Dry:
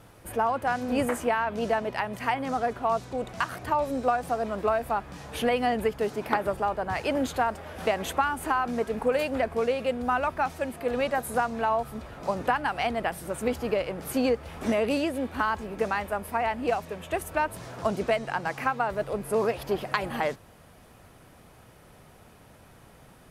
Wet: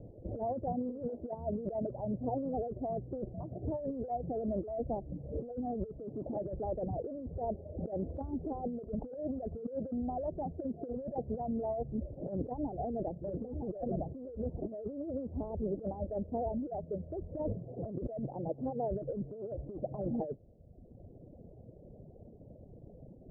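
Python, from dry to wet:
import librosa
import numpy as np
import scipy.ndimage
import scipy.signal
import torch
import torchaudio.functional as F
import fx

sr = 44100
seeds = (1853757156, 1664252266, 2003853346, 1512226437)

y = fx.low_shelf(x, sr, hz=78.0, db=-9.5, at=(0.72, 1.34))
y = fx.echo_single(y, sr, ms=959, db=-4.0, at=(12.28, 14.6))
y = fx.sustainer(y, sr, db_per_s=92.0, at=(17.44, 18.34))
y = scipy.signal.sosfilt(scipy.signal.butter(8, 620.0, 'lowpass', fs=sr, output='sos'), y)
y = fx.dereverb_blind(y, sr, rt60_s=1.2)
y = fx.over_compress(y, sr, threshold_db=-37.0, ratio=-1.0)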